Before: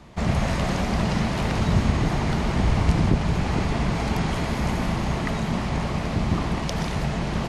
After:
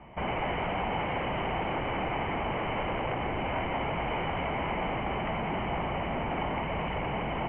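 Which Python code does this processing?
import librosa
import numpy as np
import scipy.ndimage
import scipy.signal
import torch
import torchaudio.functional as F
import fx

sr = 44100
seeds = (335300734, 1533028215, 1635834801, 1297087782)

y = 10.0 ** (-24.0 / 20.0) * (np.abs((x / 10.0 ** (-24.0 / 20.0) + 3.0) % 4.0 - 2.0) - 1.0)
y = scipy.signal.sosfilt(scipy.signal.cheby1(6, 9, 3100.0, 'lowpass', fs=sr, output='sos'), y)
y = y * librosa.db_to_amplitude(3.5)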